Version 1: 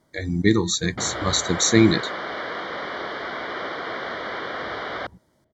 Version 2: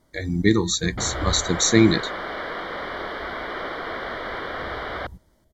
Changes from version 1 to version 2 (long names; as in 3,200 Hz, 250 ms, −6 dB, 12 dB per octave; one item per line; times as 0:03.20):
first sound: remove band-pass filter 130–2,600 Hz
second sound: add high-frequency loss of the air 76 metres